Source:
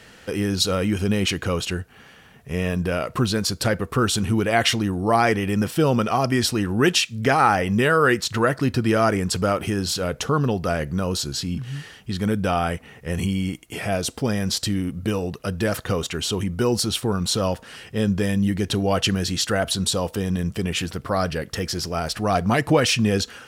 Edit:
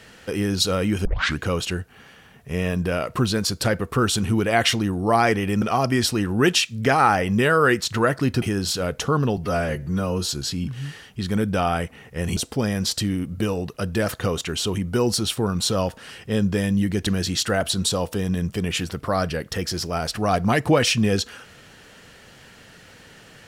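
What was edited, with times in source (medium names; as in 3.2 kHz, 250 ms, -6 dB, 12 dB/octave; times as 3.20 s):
1.05 s: tape start 0.35 s
5.62–6.02 s: delete
8.82–9.63 s: delete
10.58–11.19 s: stretch 1.5×
13.27–14.02 s: delete
18.72–19.08 s: delete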